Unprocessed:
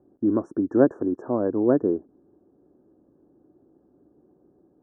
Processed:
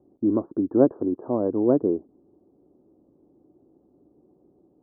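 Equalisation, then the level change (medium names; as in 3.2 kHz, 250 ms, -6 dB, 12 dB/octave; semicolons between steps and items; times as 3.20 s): low-pass 1.1 kHz 24 dB/octave; 0.0 dB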